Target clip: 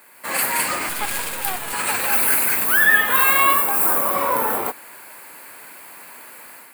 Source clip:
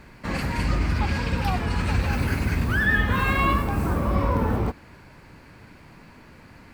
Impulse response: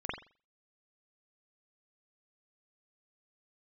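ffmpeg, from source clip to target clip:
-filter_complex "[0:a]highpass=610,asettb=1/sr,asplit=3[a][b][c];[a]atrim=end=0.894[d];[b]atrim=start=0.89:end=1.73,asetpts=PTS-STARTPTS,afade=t=in:d=0.004:c=qsin,afade=t=out:st=0.836:d=0.004:c=qsin,aeval=exprs='max(val(0),0)':c=same[e];[c]atrim=start=1.726[f];[d][e]acrossfade=d=0.004:c1=hsin:c2=qsin[g];[g][f]acrossfade=d=0.004:c1=qsin:c2=hsin,aexciter=amount=6.6:drive=8.3:freq=8.1k,dynaudnorm=f=110:g=5:m=9dB"

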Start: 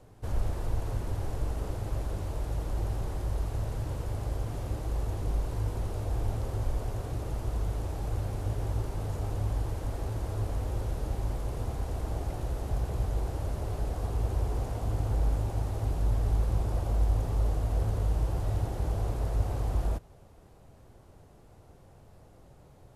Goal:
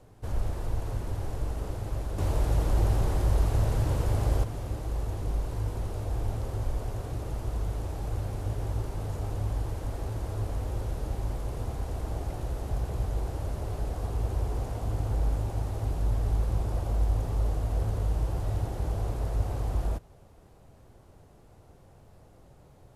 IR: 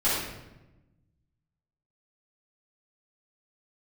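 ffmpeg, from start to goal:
-filter_complex "[0:a]asettb=1/sr,asplit=3[a][b][c];[a]atrim=end=2.184[d];[b]atrim=start=2.18:end=4.44,asetpts=PTS-STARTPTS,afade=t=in:d=0.004:c=qsin,afade=t=out:st=2.256:d=0.004:c=qsin,acontrast=85[e];[c]atrim=start=4.436[f];[d][e]acrossfade=d=0.004:c1=hsin:c2=qsin[g];[g][f]acrossfade=d=0.004:c1=qsin:c2=hsin"

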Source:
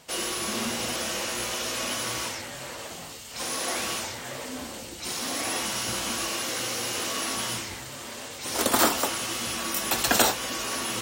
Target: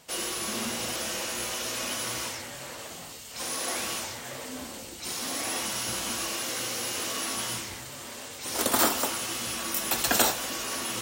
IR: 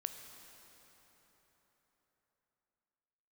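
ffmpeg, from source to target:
-filter_complex "[0:a]asplit=2[a][b];[1:a]atrim=start_sample=2205,afade=t=out:st=0.38:d=0.01,atrim=end_sample=17199,highshelf=f=7.5k:g=8[c];[b][c]afir=irnorm=-1:irlink=0,volume=0dB[d];[a][d]amix=inputs=2:normalize=0,volume=-8dB"

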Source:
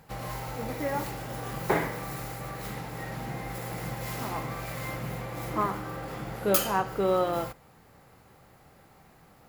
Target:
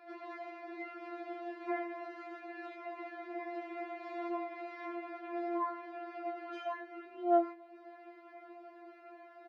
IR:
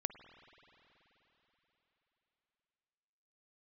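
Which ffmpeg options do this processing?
-filter_complex "[0:a]acompressor=threshold=-49dB:ratio=2,highpass=240,equalizer=f=290:t=q:w=4:g=10,equalizer=f=690:t=q:w=4:g=6,equalizer=f=1.1k:t=q:w=4:g=-5,equalizer=f=3.2k:t=q:w=4:g=-9,lowpass=f=3.2k:w=0.5412,lowpass=f=3.2k:w=1.3066,asplit=2[a][b];[b]adelay=29,volume=-10.5dB[c];[a][c]amix=inputs=2:normalize=0,asplit=2[d][e];[1:a]atrim=start_sample=2205[f];[e][f]afir=irnorm=-1:irlink=0,volume=-9dB[g];[d][g]amix=inputs=2:normalize=0,afftfilt=real='re*4*eq(mod(b,16),0)':imag='im*4*eq(mod(b,16),0)':win_size=2048:overlap=0.75,volume=2.5dB"

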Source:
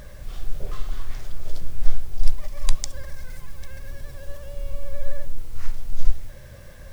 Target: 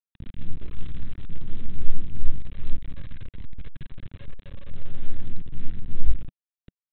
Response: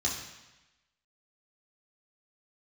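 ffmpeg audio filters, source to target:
-af "afftfilt=real='re':imag='-im':win_size=2048:overlap=0.75,bandreject=f=60:t=h:w=6,bandreject=f=120:t=h:w=6,bandreject=f=180:t=h:w=6,bandreject=f=240:t=h:w=6,bandreject=f=300:t=h:w=6,bandreject=f=360:t=h:w=6,bandreject=f=420:t=h:w=6,bandreject=f=480:t=h:w=6,bandreject=f=540:t=h:w=6,aresample=8000,acrusher=bits=5:mix=0:aa=0.000001,aresample=44100,firequalizer=gain_entry='entry(180,0);entry(630,-21);entry(1800,-14)':delay=0.05:min_phase=1,volume=2.5dB"

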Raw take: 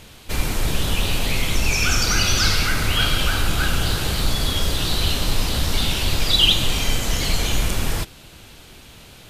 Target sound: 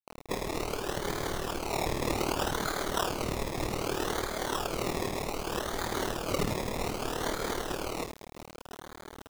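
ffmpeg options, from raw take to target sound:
-af "acompressor=threshold=-22dB:ratio=16,lowshelf=f=250:t=q:w=3:g=-14,bandreject=f=1k:w=24,aecho=1:1:81:0.473,acrusher=samples=23:mix=1:aa=0.000001:lfo=1:lforange=13.8:lforate=0.64,adynamicequalizer=threshold=0.00355:dfrequency=5800:dqfactor=0.95:tfrequency=5800:tqfactor=0.95:attack=5:release=100:ratio=0.375:range=1.5:mode=boostabove:tftype=bell,tremolo=f=38:d=0.71,acrusher=bits=6:mix=0:aa=0.000001"

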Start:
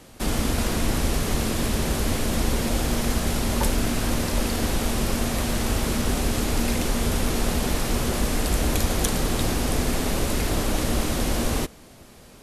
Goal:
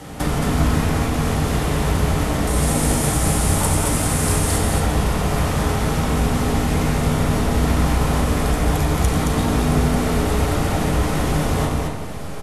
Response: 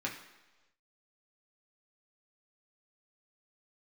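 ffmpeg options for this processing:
-filter_complex "[0:a]acompressor=threshold=-32dB:ratio=6,asettb=1/sr,asplit=3[a][b][c];[a]atrim=end=2.474[d];[b]atrim=start=2.47:end=4.58,asetpts=PTS-STARTPTS,afade=t=in:d=0.004:c=qsin,afade=t=out:st=2.106:d=0.004:c=qsin,equalizer=f=9.2k:t=o:w=0.95:g=14[e];[c]atrim=start=4.576[f];[d][e]acrossfade=d=0.004:c1=hsin:c2=qsin[g];[g][f]acrossfade=d=0.004:c1=qsin:c2=hsin,aecho=1:1:90.38|221.6:0.355|0.708[h];[1:a]atrim=start_sample=2205,asetrate=23814,aresample=44100[i];[h][i]afir=irnorm=-1:irlink=0,volume=7dB"

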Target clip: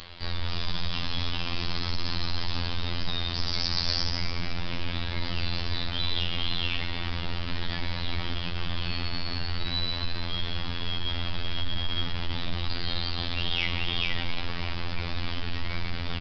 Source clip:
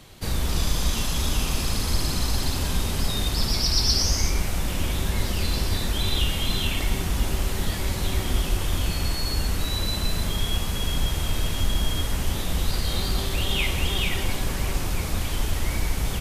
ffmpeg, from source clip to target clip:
-filter_complex "[0:a]equalizer=f=190:w=0.34:g=-11,asplit=5[a][b][c][d][e];[b]adelay=306,afreqshift=110,volume=-15dB[f];[c]adelay=612,afreqshift=220,volume=-21.9dB[g];[d]adelay=918,afreqshift=330,volume=-28.9dB[h];[e]adelay=1224,afreqshift=440,volume=-35.8dB[i];[a][f][g][h][i]amix=inputs=5:normalize=0,aresample=11025,asoftclip=type=tanh:threshold=-23.5dB,aresample=44100,afftfilt=real='hypot(re,im)*cos(PI*b)':imag='0':win_size=2048:overlap=0.75,acompressor=mode=upward:threshold=-40dB:ratio=2.5,volume=5.5dB"

